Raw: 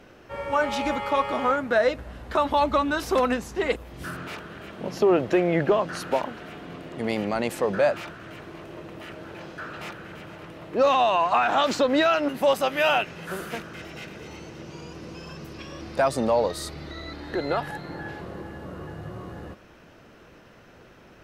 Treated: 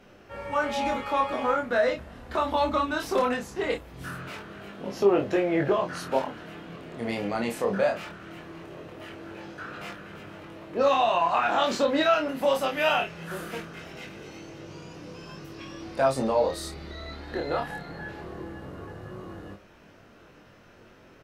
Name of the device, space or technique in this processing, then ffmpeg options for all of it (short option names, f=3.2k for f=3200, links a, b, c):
double-tracked vocal: -filter_complex "[0:a]asplit=2[a][b];[b]adelay=30,volume=-8dB[c];[a][c]amix=inputs=2:normalize=0,flanger=delay=20:depth=6:speed=0.2"